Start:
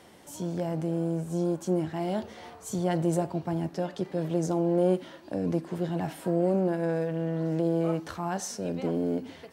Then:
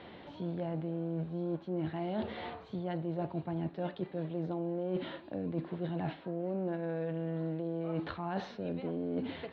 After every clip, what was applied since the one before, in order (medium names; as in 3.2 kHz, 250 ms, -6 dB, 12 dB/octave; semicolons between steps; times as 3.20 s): Chebyshev low-pass 4 kHz, order 5; reverse; compression 12:1, threshold -36 dBFS, peak gain reduction 16.5 dB; reverse; trim +4 dB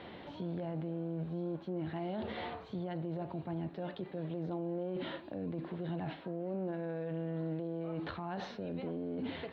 peak limiter -32 dBFS, peak gain reduction 10 dB; trim +1.5 dB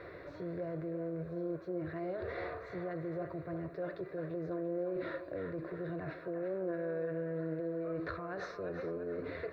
static phaser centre 840 Hz, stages 6; band-passed feedback delay 344 ms, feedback 53%, band-pass 1.3 kHz, level -6 dB; trim +4 dB